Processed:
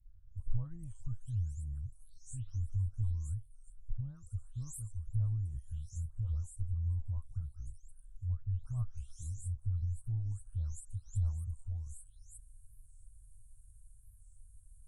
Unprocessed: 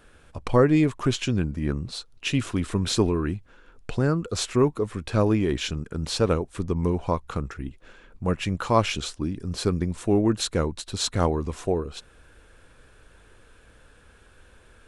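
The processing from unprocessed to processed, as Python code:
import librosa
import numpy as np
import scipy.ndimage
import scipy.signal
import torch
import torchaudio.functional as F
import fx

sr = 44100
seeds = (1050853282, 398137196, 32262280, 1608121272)

y = fx.spec_delay(x, sr, highs='late', ms=377)
y = scipy.signal.sosfilt(scipy.signal.cheby2(4, 40, [180.0, 4900.0], 'bandstop', fs=sr, output='sos'), y)
y = fx.env_lowpass_down(y, sr, base_hz=2200.0, full_db=-31.5)
y = fx.record_warp(y, sr, rpm=45.0, depth_cents=160.0)
y = F.gain(torch.from_numpy(y), 1.5).numpy()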